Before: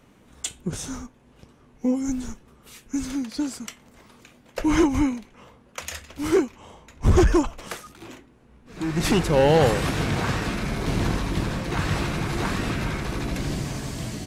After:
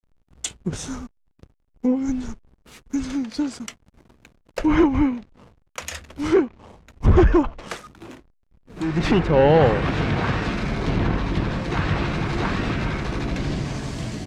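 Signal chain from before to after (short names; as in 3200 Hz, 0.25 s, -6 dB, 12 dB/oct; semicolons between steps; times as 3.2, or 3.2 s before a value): backlash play -40.5 dBFS; treble ducked by the level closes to 2600 Hz, closed at -18.5 dBFS; gain +2.5 dB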